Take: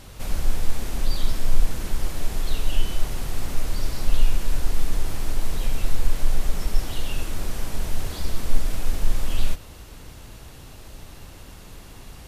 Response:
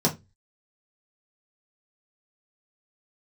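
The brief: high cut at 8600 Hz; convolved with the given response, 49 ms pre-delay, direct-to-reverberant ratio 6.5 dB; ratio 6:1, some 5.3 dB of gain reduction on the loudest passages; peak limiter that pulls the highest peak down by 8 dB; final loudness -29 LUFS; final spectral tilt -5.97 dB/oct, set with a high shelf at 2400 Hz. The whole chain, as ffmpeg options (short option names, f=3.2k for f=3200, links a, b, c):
-filter_complex "[0:a]lowpass=8.6k,highshelf=f=2.4k:g=-6.5,acompressor=threshold=-14dB:ratio=6,alimiter=limit=-18dB:level=0:latency=1,asplit=2[a][b];[1:a]atrim=start_sample=2205,adelay=49[c];[b][c]afir=irnorm=-1:irlink=0,volume=-19dB[d];[a][d]amix=inputs=2:normalize=0,volume=6.5dB"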